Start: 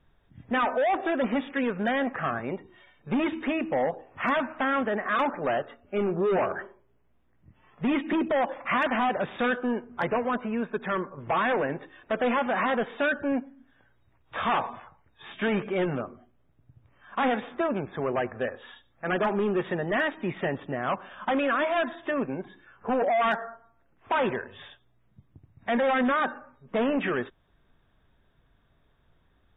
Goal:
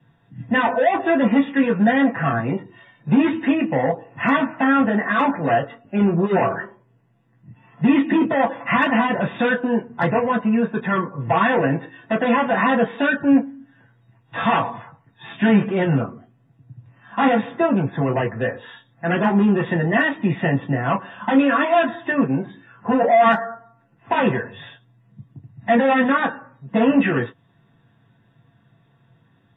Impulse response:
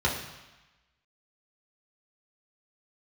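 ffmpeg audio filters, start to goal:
-filter_complex "[1:a]atrim=start_sample=2205,atrim=end_sample=3528,asetrate=83790,aresample=44100[link_01];[0:a][link_01]afir=irnorm=-1:irlink=0"

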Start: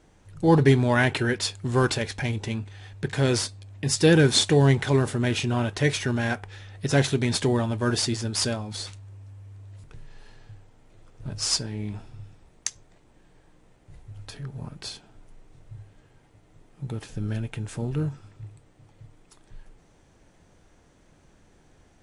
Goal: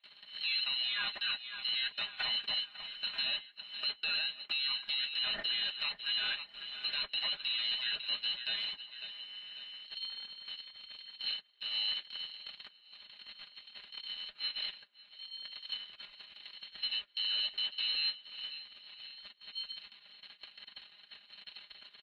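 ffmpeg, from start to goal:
ffmpeg -i in.wav -filter_complex "[0:a]aeval=exprs='val(0)+0.5*0.0422*sgn(val(0))':channel_layout=same,bandreject=frequency=680:width=12,asplit=2[link_01][link_02];[link_02]acompressor=mode=upward:threshold=-22dB:ratio=2.5,volume=1dB[link_03];[link_01][link_03]amix=inputs=2:normalize=0,lowpass=frequency=3100:width_type=q:width=0.5098,lowpass=frequency=3100:width_type=q:width=0.6013,lowpass=frequency=3100:width_type=q:width=0.9,lowpass=frequency=3100:width_type=q:width=2.563,afreqshift=-3700,aeval=exprs='val(0)*sin(2*PI*580*n/s)':channel_layout=same,acompressor=threshold=-17dB:ratio=8,agate=range=-53dB:threshold=-21dB:ratio=16:detection=peak,aecho=1:1:4.9:0.64,asplit=2[link_04][link_05];[link_05]aecho=0:1:547|1094|1641:0.0794|0.0397|0.0199[link_06];[link_04][link_06]amix=inputs=2:normalize=0,alimiter=limit=-23.5dB:level=0:latency=1:release=56,superequalizer=7b=0.708:11b=1.41,volume=-1.5dB" -ar 32000 -c:a libvorbis -b:a 48k out.ogg

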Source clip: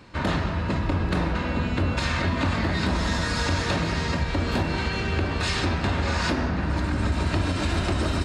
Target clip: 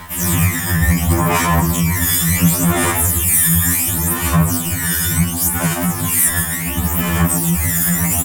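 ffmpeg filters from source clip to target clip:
ffmpeg -i in.wav -filter_complex "[0:a]acrossover=split=1200[link_01][link_02];[link_01]aeval=exprs='val(0)*(1-0.7/2+0.7/2*cos(2*PI*2.5*n/s))':channel_layout=same[link_03];[link_02]aeval=exprs='val(0)*(1-0.7/2-0.7/2*cos(2*PI*2.5*n/s))':channel_layout=same[link_04];[link_03][link_04]amix=inputs=2:normalize=0,lowshelf=frequency=230:gain=11.5,aexciter=amount=15.6:drive=8.9:freq=3600,asplit=2[link_05][link_06];[link_06]asplit=5[link_07][link_08][link_09][link_10][link_11];[link_07]adelay=156,afreqshift=49,volume=-5dB[link_12];[link_08]adelay=312,afreqshift=98,volume=-13dB[link_13];[link_09]adelay=468,afreqshift=147,volume=-20.9dB[link_14];[link_10]adelay=624,afreqshift=196,volume=-28.9dB[link_15];[link_11]adelay=780,afreqshift=245,volume=-36.8dB[link_16];[link_12][link_13][link_14][link_15][link_16]amix=inputs=5:normalize=0[link_17];[link_05][link_17]amix=inputs=2:normalize=0,acrossover=split=6400[link_18][link_19];[link_19]acompressor=threshold=-31dB:ratio=4:attack=1:release=60[link_20];[link_18][link_20]amix=inputs=2:normalize=0,acrusher=bits=6:mix=0:aa=0.000001,aphaser=in_gain=1:out_gain=1:delay=1.1:decay=0.69:speed=0.7:type=sinusoidal,equalizer=frequency=125:width_type=o:width=1:gain=-6,equalizer=frequency=250:width_type=o:width=1:gain=-12,equalizer=frequency=500:width_type=o:width=1:gain=10,equalizer=frequency=1000:width_type=o:width=1:gain=8,equalizer=frequency=2000:width_type=o:width=1:gain=3,equalizer=frequency=4000:width_type=o:width=1:gain=-8,equalizer=frequency=8000:width_type=o:width=1:gain=8,dynaudnorm=framelen=120:gausssize=5:maxgain=11.5dB,asetrate=83250,aresample=44100,atempo=0.529732,afftfilt=real='re*2*eq(mod(b,4),0)':imag='im*2*eq(mod(b,4),0)':win_size=2048:overlap=0.75,volume=1dB" out.wav

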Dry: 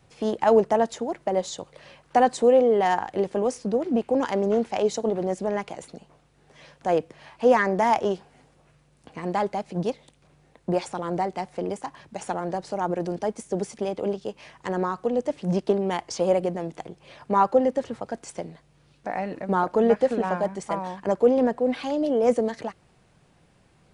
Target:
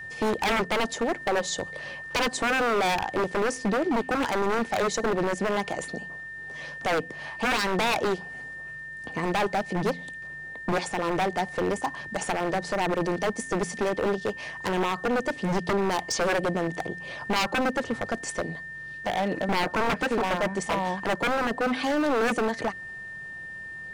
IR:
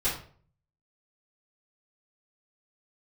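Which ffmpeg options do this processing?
-filter_complex "[0:a]aeval=exprs='val(0)+0.00708*sin(2*PI*1800*n/s)':channel_layout=same,asplit=2[link_01][link_02];[link_02]acompressor=threshold=-29dB:ratio=6,volume=1dB[link_03];[link_01][link_03]amix=inputs=2:normalize=0,aeval=exprs='0.112*(abs(mod(val(0)/0.112+3,4)-2)-1)':channel_layout=same,bandreject=frequency=86.63:width_type=h:width=4,bandreject=frequency=173.26:width_type=h:width=4,bandreject=frequency=259.89:width_type=h:width=4"

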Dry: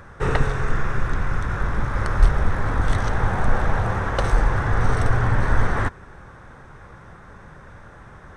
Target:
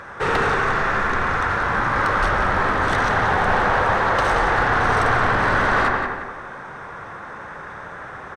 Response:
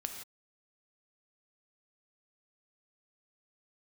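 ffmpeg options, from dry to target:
-filter_complex "[0:a]asplit=2[link_01][link_02];[link_02]highpass=frequency=720:poles=1,volume=26dB,asoftclip=type=tanh:threshold=-2dB[link_03];[link_01][link_03]amix=inputs=2:normalize=0,lowpass=frequency=3500:poles=1,volume=-6dB,asplit=2[link_04][link_05];[link_05]adelay=177,lowpass=frequency=3600:poles=1,volume=-5dB,asplit=2[link_06][link_07];[link_07]adelay=177,lowpass=frequency=3600:poles=1,volume=0.36,asplit=2[link_08][link_09];[link_09]adelay=177,lowpass=frequency=3600:poles=1,volume=0.36,asplit=2[link_10][link_11];[link_11]adelay=177,lowpass=frequency=3600:poles=1,volume=0.36[link_12];[link_04][link_06][link_08][link_10][link_12]amix=inputs=5:normalize=0,asplit=2[link_13][link_14];[1:a]atrim=start_sample=2205,lowpass=2300,adelay=80[link_15];[link_14][link_15]afir=irnorm=-1:irlink=0,volume=-2dB[link_16];[link_13][link_16]amix=inputs=2:normalize=0,volume=-9dB"

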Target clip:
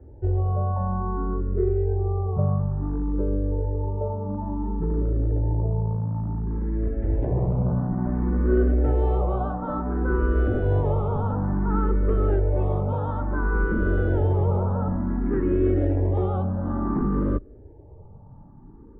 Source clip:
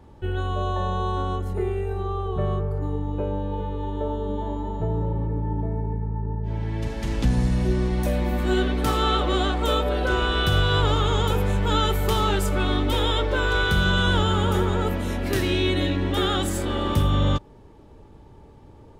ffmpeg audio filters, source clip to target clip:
ffmpeg -i in.wav -filter_complex "[0:a]tiltshelf=frequency=640:gain=6.5,acrossover=split=350[link_01][link_02];[link_01]aeval=exprs='0.178*(abs(mod(val(0)/0.178+3,4)-2)-1)':channel_layout=same[link_03];[link_03][link_02]amix=inputs=2:normalize=0,lowpass=frequency=1500:width=0.5412,lowpass=frequency=1500:width=1.3066,asplit=2[link_04][link_05];[link_05]afreqshift=0.57[link_06];[link_04][link_06]amix=inputs=2:normalize=1" out.wav

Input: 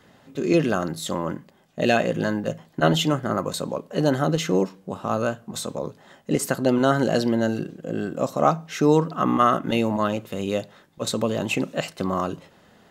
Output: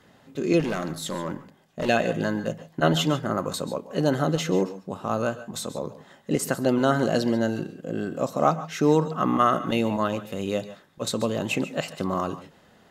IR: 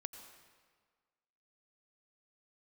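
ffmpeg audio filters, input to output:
-filter_complex "[0:a]asettb=1/sr,asplit=3[link_01][link_02][link_03];[link_01]atrim=end=0.604[link_04];[link_02]atrim=start=0.6:end=1.89,asetpts=PTS-STARTPTS,afade=type=in:duration=0.004:curve=qsin,afade=type=out:start_time=1.286:duration=0.004:curve=qsin,asoftclip=type=hard:threshold=-21.5dB[link_05];[link_03]atrim=start=1.886[link_06];[link_04][link_05]acrossfade=duration=0.004:curve1=hsin:curve2=qsin[link_07];[link_07][link_06]acrossfade=duration=0.004:curve1=qsin:curve2=hsin[link_08];[1:a]atrim=start_sample=2205,atrim=end_sample=4410,asetrate=28665,aresample=44100[link_09];[link_08][link_09]afir=irnorm=-1:irlink=0"

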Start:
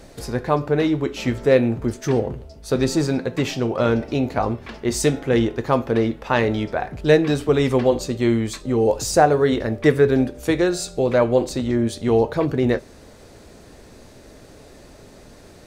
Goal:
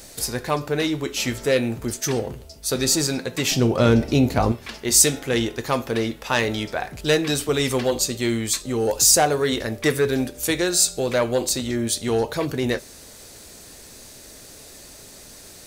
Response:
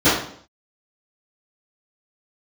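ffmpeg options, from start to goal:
-filter_complex "[0:a]asoftclip=type=tanh:threshold=-6.5dB,asettb=1/sr,asplit=3[link_01][link_02][link_03];[link_01]atrim=end=3.514[link_04];[link_02]atrim=start=3.51:end=4.52,asetpts=PTS-STARTPTS,afade=type=in:duration=0.004:curve=qsin,afade=type=out:start_time=1.006:duration=0.004:curve=qsin,lowshelf=frequency=430:gain=11.5[link_05];[link_03]atrim=start=4.516[link_06];[link_04][link_05]acrossfade=duration=0.004:curve1=hsin:curve2=qsin[link_07];[link_07][link_06]acrossfade=duration=0.004:curve1=qsin:curve2=hsin,crystalizer=i=6.5:c=0,volume=-4.5dB"

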